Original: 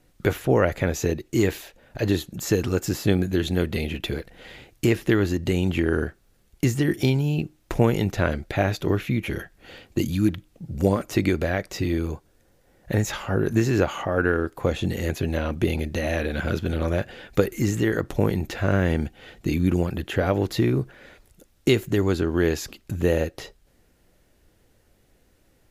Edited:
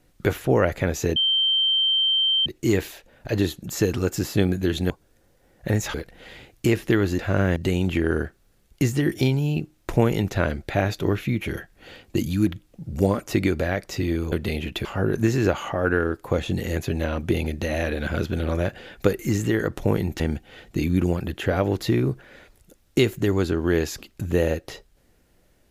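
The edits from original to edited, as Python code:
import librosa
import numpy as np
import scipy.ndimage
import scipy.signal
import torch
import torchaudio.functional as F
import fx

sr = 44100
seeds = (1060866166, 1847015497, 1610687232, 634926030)

y = fx.edit(x, sr, fx.insert_tone(at_s=1.16, length_s=1.3, hz=3130.0, db=-17.5),
    fx.swap(start_s=3.6, length_s=0.53, other_s=12.14, other_length_s=1.04),
    fx.move(start_s=18.53, length_s=0.37, to_s=5.38), tone=tone)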